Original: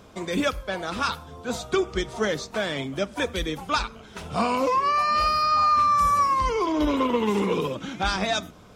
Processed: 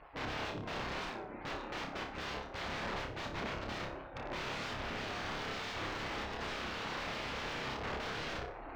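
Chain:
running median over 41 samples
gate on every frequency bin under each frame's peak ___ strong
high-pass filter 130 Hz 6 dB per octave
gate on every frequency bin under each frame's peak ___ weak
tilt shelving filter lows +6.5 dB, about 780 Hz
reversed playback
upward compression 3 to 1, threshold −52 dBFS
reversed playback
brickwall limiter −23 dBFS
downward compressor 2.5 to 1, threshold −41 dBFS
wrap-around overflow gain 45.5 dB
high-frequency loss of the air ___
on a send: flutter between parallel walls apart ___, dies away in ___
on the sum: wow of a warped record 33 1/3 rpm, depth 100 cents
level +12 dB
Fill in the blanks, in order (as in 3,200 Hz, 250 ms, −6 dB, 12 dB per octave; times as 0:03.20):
−35 dB, −15 dB, 210 metres, 5 metres, 0.37 s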